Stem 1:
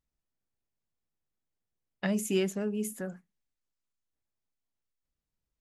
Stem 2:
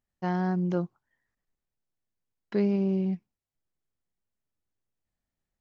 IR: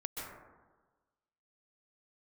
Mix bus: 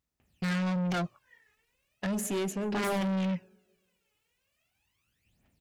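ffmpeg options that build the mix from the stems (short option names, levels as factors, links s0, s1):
-filter_complex "[0:a]volume=1.33,asplit=3[s0][s1][s2];[s1]volume=0.158[s3];[1:a]equalizer=f=2600:w=2.4:g=14.5,aphaser=in_gain=1:out_gain=1:delay=2.4:decay=0.78:speed=0.38:type=triangular,aeval=exprs='0.668*sin(PI/2*6.31*val(0)/0.668)':c=same,adelay=200,volume=0.266[s4];[s2]apad=whole_len=256172[s5];[s4][s5]sidechaincompress=threshold=0.0251:ratio=8:attack=6.3:release=149[s6];[2:a]atrim=start_sample=2205[s7];[s3][s7]afir=irnorm=-1:irlink=0[s8];[s0][s6][s8]amix=inputs=3:normalize=0,highpass=64,asoftclip=type=tanh:threshold=0.0398"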